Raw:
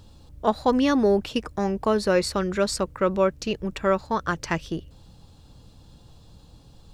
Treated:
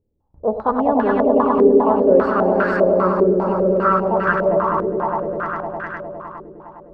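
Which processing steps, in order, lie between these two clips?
de-hum 48.65 Hz, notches 18; gate with hold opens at -38 dBFS; swelling echo 0.102 s, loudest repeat 5, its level -5.5 dB; stepped low-pass 5 Hz 430–1600 Hz; gain -1.5 dB

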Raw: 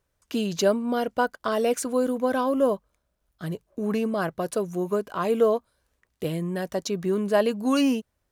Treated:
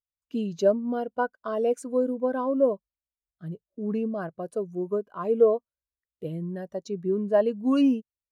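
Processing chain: spectral expander 1.5:1

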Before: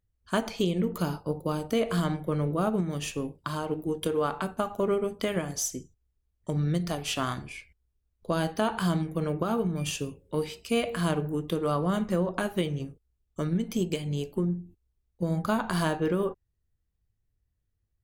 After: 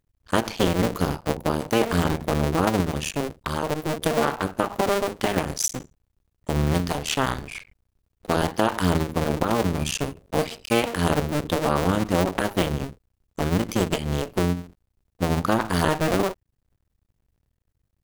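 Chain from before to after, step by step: cycle switcher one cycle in 2, muted; gain +8 dB

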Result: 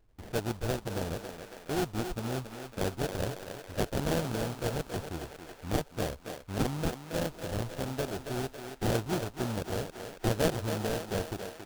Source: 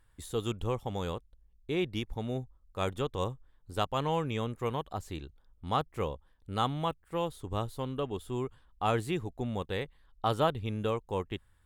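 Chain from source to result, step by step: sample-rate reducer 1100 Hz, jitter 20%; thinning echo 0.276 s, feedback 58%, high-pass 240 Hz, level -7 dB; dynamic EQ 2000 Hz, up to -5 dB, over -50 dBFS, Q 1.9

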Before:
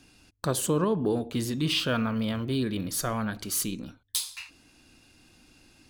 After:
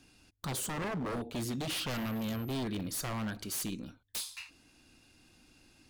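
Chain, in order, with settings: 1.89–2.52 whine 13000 Hz -48 dBFS; wavefolder -26 dBFS; gain -4.5 dB

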